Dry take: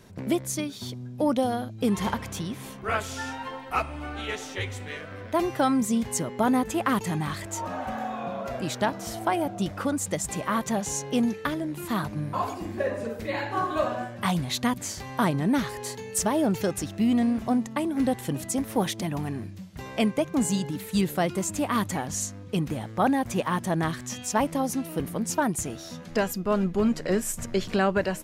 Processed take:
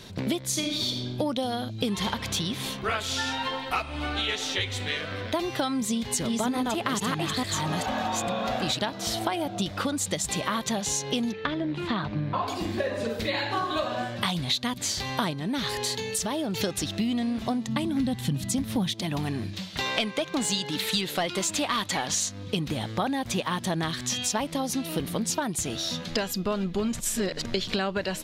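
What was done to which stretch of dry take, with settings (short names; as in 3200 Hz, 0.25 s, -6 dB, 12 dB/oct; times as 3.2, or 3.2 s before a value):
0.43–1.14 reverb throw, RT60 1.1 s, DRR 2.5 dB
5.71–8.79 reverse delay 0.431 s, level -1.5 dB
11.32–12.48 LPF 2700 Hz
15.33–16.62 compressor 3:1, threshold -31 dBFS
17.68–18.94 resonant low shelf 270 Hz +9.5 dB, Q 1.5
19.53–22.29 overdrive pedal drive 13 dB, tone 5400 Hz, clips at -12 dBFS
26.93–27.45 reverse
whole clip: bell 3800 Hz +13 dB 1 oct; compressor, threshold -30 dBFS; gain +5 dB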